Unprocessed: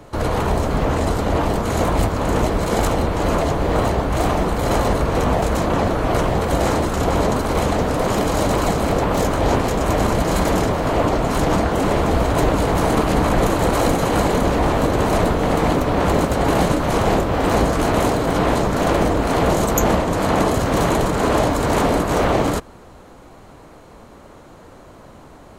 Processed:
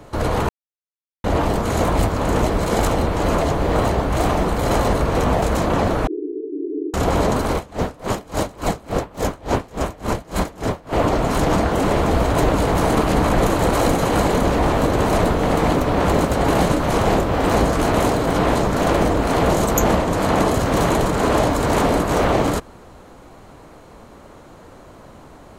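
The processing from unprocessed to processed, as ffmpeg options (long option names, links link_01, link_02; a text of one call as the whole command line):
ffmpeg -i in.wav -filter_complex "[0:a]asettb=1/sr,asplit=3[link_01][link_02][link_03];[link_01]atrim=end=6.074[link_04];[link_02]atrim=start=6.07:end=6.94,asetpts=PTS-STARTPTS,afade=type=in:duration=0.004:curve=qsin,afade=type=out:start_time=0.866:duration=0.004:curve=qsin,asuperpass=centerf=350:order=20:qfactor=2.1[link_05];[link_03]atrim=start=6.936[link_06];[link_04][link_05]acrossfade=duration=0.004:curve1=hsin:curve2=qsin[link_07];[link_07][link_06]acrossfade=duration=0.004:curve1=qsin:curve2=hsin,asettb=1/sr,asplit=3[link_08][link_09][link_10];[link_08]atrim=end=7.544[link_11];[link_09]atrim=start=7.54:end=10.93,asetpts=PTS-STARTPTS,afade=type=in:duration=0.004:curve=qsin,afade=type=out:start_time=3.386:duration=0.004:curve=qsin,aeval=exprs='val(0)*pow(10,-26*(0.5-0.5*cos(2*PI*3.5*n/s))/20)':channel_layout=same[link_12];[link_10]atrim=start=10.926[link_13];[link_11][link_12]acrossfade=duration=0.004:curve1=hsin:curve2=qsin[link_14];[link_14][link_13]acrossfade=duration=0.004:curve1=qsin:curve2=hsin,asplit=3[link_15][link_16][link_17];[link_15]atrim=end=0.49,asetpts=PTS-STARTPTS,afade=type=out:start_time=0.486:duration=0.004:curve=hsin[link_18];[link_16]atrim=start=0.49:end=1.24,asetpts=PTS-STARTPTS,volume=0[link_19];[link_17]atrim=start=1.24,asetpts=PTS-STARTPTS,afade=type=in:duration=0.004:curve=hsin[link_20];[link_18][link_19][link_20]concat=n=3:v=0:a=1" out.wav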